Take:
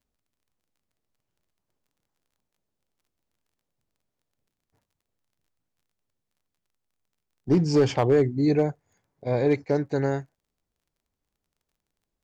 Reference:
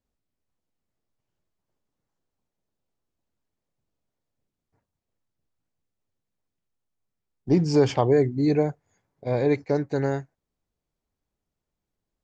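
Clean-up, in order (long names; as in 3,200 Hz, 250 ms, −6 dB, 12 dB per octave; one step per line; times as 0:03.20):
clipped peaks rebuilt −13 dBFS
click removal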